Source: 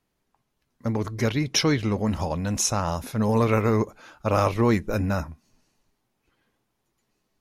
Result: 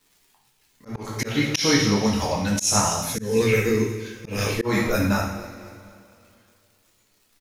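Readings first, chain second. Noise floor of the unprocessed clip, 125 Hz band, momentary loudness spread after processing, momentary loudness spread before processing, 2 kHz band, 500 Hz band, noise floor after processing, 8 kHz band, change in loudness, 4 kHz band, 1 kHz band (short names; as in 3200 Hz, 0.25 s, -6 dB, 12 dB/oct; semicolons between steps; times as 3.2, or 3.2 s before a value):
-76 dBFS, -1.0 dB, 15 LU, 9 LU, +6.0 dB, +1.5 dB, -64 dBFS, +5.0 dB, +2.0 dB, +5.0 dB, 0.0 dB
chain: crackle 340/s -55 dBFS; reverb removal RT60 1.2 s; high shelf 2100 Hz +8 dB; feedback echo 0.243 s, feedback 46%, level -18 dB; two-slope reverb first 0.64 s, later 2.7 s, from -17 dB, DRR -3.5 dB; spectral gain 3.15–4.65, 530–1500 Hz -14 dB; auto swell 0.195 s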